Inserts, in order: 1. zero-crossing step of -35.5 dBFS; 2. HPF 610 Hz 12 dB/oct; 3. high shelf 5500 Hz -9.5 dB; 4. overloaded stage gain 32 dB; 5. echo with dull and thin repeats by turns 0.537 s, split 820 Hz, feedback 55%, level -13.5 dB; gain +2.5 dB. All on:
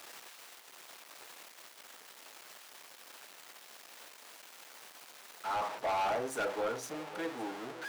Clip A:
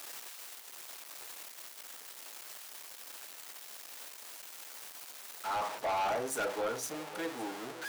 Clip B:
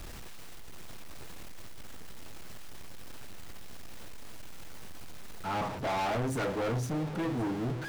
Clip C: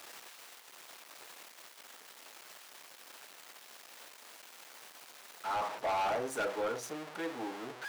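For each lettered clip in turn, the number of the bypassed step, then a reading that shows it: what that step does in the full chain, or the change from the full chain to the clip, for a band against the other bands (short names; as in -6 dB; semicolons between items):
3, 8 kHz band +6.0 dB; 2, 125 Hz band +20.5 dB; 5, echo-to-direct -16.5 dB to none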